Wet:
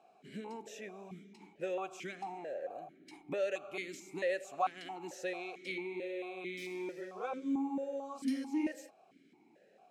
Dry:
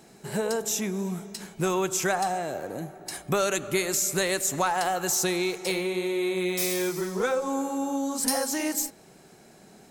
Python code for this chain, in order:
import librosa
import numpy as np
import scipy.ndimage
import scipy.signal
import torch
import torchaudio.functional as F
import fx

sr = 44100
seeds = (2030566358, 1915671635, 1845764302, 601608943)

y = fx.vowel_held(x, sr, hz=4.5)